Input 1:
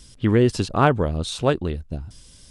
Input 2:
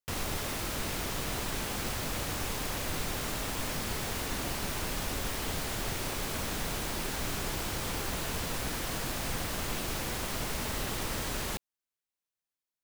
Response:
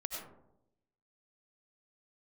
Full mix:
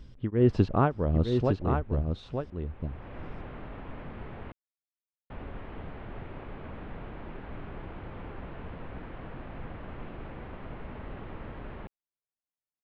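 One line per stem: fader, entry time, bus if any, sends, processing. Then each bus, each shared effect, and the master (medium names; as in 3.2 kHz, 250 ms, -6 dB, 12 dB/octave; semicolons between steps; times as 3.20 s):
+2.0 dB, 0.00 s, no send, echo send -5.5 dB, tremolo of two beating tones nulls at 1.6 Hz
-3.5 dB, 0.30 s, muted 4.52–5.30 s, no send, no echo send, low-pass 3.1 kHz 24 dB/octave; auto duck -16 dB, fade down 0.75 s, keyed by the first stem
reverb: none
echo: delay 908 ms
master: tape spacing loss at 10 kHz 42 dB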